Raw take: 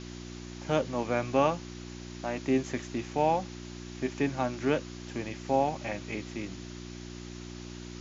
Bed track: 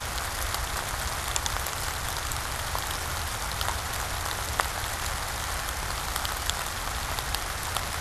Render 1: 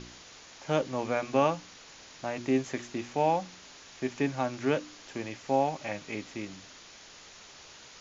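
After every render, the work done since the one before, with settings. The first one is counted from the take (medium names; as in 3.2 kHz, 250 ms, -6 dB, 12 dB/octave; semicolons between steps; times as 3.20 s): de-hum 60 Hz, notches 6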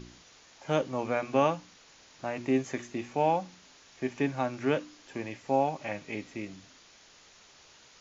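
noise print and reduce 6 dB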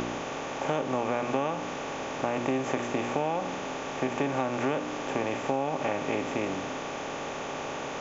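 spectral levelling over time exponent 0.4; compression 6:1, threshold -24 dBFS, peak gain reduction 8.5 dB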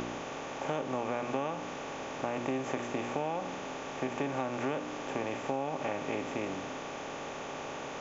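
trim -5 dB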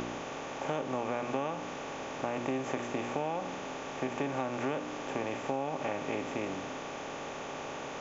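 no audible change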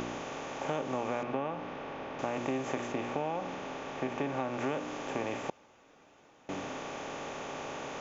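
1.23–2.19 s: distance through air 240 m; 2.92–4.59 s: distance through air 78 m; 5.50–6.49 s: room tone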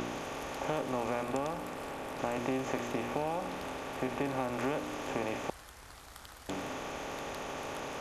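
add bed track -21 dB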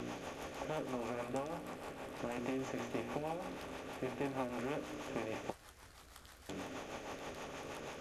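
flange 0.72 Hz, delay 8.7 ms, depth 6.2 ms, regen -48%; rotary cabinet horn 6.3 Hz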